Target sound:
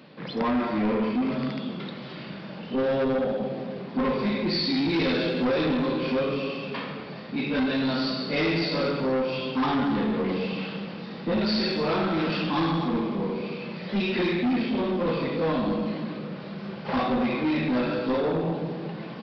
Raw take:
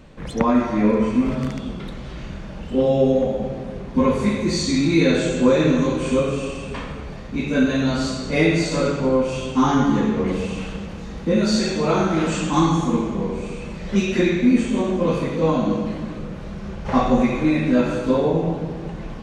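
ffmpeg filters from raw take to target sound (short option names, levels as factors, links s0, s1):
-filter_complex "[0:a]highpass=f=150:w=0.5412,highpass=f=150:w=1.3066,highshelf=f=4200:g=8.5,aresample=11025,asoftclip=type=tanh:threshold=0.106,aresample=44100,asplit=2[s0][s1];[s1]adelay=210,highpass=300,lowpass=3400,asoftclip=type=hard:threshold=0.0596,volume=0.0708[s2];[s0][s2]amix=inputs=2:normalize=0,volume=0.841"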